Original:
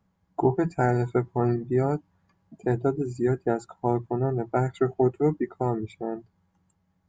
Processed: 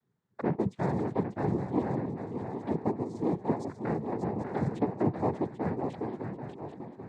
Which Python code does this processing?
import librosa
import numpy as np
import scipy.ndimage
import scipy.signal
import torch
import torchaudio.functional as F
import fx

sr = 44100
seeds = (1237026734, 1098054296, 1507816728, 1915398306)

y = fx.env_flanger(x, sr, rest_ms=5.6, full_db=-23.5)
y = fx.echo_swing(y, sr, ms=789, ratio=3, feedback_pct=41, wet_db=-6.5)
y = fx.noise_vocoder(y, sr, seeds[0], bands=6)
y = y * librosa.db_to_amplitude(-5.5)